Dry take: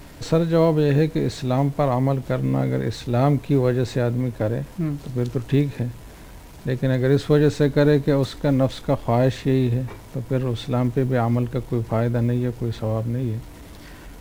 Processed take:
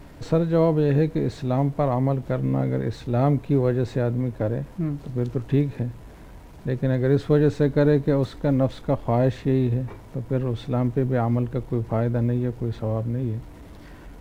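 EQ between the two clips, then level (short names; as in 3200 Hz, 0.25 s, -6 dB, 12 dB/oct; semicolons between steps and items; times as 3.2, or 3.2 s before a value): high shelf 2400 Hz -9.5 dB; -1.5 dB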